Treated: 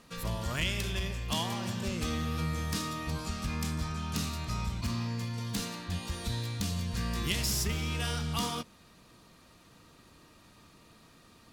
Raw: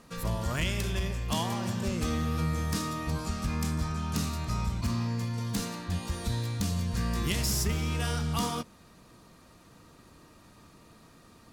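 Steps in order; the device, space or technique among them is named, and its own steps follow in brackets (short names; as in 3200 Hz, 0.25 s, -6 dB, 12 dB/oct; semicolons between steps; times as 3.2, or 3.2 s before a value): presence and air boost (bell 3200 Hz +5.5 dB 1.5 oct; high shelf 11000 Hz +3 dB); gain -3.5 dB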